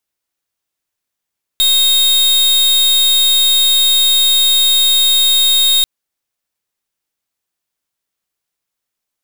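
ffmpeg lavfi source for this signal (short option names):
-f lavfi -i "aevalsrc='0.282*(2*lt(mod(3720*t,1),0.41)-1)':d=4.24:s=44100"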